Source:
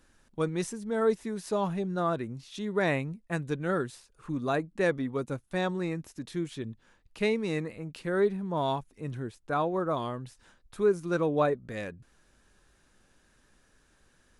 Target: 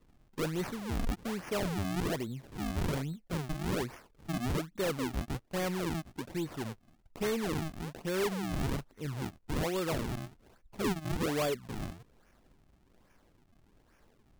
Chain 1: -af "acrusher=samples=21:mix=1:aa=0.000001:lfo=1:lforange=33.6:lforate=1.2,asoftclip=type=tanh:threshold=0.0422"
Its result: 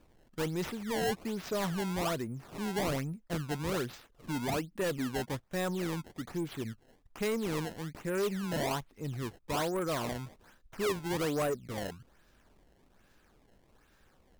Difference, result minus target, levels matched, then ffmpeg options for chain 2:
decimation with a swept rate: distortion -8 dB
-af "acrusher=samples=53:mix=1:aa=0.000001:lfo=1:lforange=84.8:lforate=1.2,asoftclip=type=tanh:threshold=0.0422"

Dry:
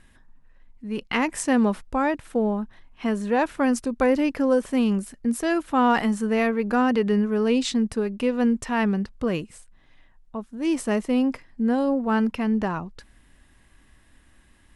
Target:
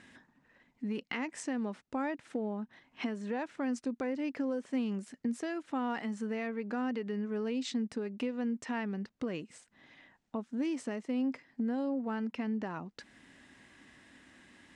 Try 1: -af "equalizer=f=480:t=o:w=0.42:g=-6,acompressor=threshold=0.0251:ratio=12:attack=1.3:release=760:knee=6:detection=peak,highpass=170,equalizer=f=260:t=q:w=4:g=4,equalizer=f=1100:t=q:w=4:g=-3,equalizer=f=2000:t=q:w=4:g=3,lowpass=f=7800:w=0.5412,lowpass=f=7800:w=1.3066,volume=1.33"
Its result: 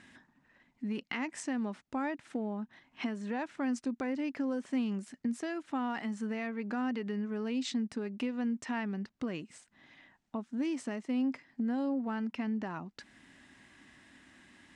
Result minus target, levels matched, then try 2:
500 Hz band -3.0 dB
-af "acompressor=threshold=0.0251:ratio=12:attack=1.3:release=760:knee=6:detection=peak,highpass=170,equalizer=f=260:t=q:w=4:g=4,equalizer=f=1100:t=q:w=4:g=-3,equalizer=f=2000:t=q:w=4:g=3,lowpass=f=7800:w=0.5412,lowpass=f=7800:w=1.3066,volume=1.33"

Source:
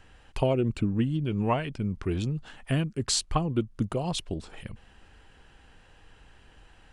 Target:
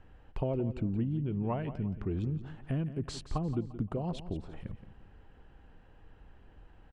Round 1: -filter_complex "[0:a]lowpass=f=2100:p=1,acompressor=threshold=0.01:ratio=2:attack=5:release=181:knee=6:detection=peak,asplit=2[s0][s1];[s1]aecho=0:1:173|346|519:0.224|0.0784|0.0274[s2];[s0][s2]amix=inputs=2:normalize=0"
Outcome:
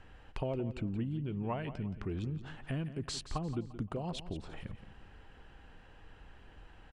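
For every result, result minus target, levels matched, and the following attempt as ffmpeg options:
2 kHz band +7.5 dB; compression: peak gain reduction +5 dB
-filter_complex "[0:a]lowpass=f=650:p=1,acompressor=threshold=0.01:ratio=2:attack=5:release=181:knee=6:detection=peak,asplit=2[s0][s1];[s1]aecho=0:1:173|346|519:0.224|0.0784|0.0274[s2];[s0][s2]amix=inputs=2:normalize=0"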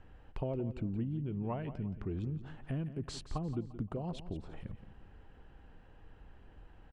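compression: peak gain reduction +4 dB
-filter_complex "[0:a]lowpass=f=650:p=1,acompressor=threshold=0.0266:ratio=2:attack=5:release=181:knee=6:detection=peak,asplit=2[s0][s1];[s1]aecho=0:1:173|346|519:0.224|0.0784|0.0274[s2];[s0][s2]amix=inputs=2:normalize=0"

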